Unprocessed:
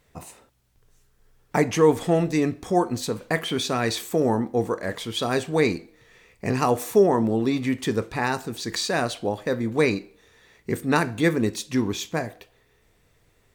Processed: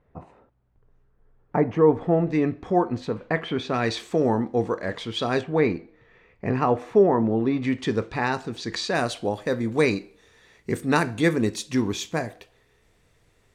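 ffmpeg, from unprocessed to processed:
-af "asetnsamples=n=441:p=0,asendcmd='2.27 lowpass f 2400;3.74 lowpass f 4700;5.41 lowpass f 2100;7.62 lowpass f 4900;8.95 lowpass f 11000',lowpass=1.2k"

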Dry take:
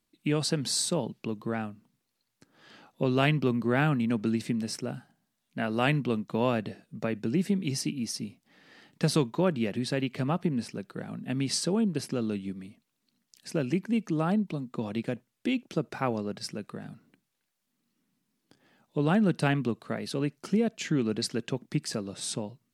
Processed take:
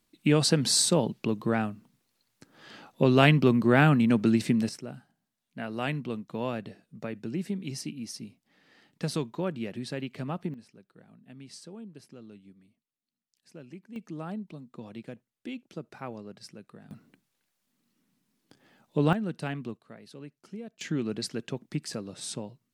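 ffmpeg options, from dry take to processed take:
-af "asetnsamples=n=441:p=0,asendcmd='4.69 volume volume -5.5dB;10.54 volume volume -17.5dB;13.96 volume volume -10dB;16.91 volume volume 2.5dB;19.13 volume volume -8dB;19.77 volume volume -15dB;20.81 volume volume -3dB',volume=5dB"

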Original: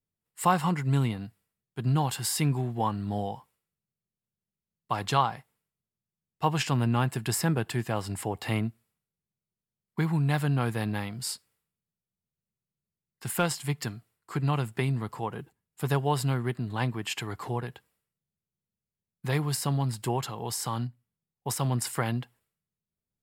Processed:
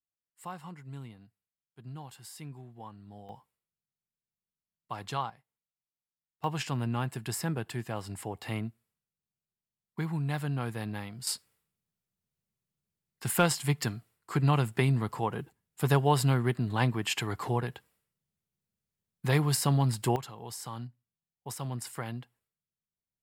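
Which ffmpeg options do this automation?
-af "asetnsamples=n=441:p=0,asendcmd='3.29 volume volume -9dB;5.3 volume volume -17.5dB;6.44 volume volume -6dB;11.27 volume volume 2dB;20.16 volume volume -8.5dB',volume=-18dB"

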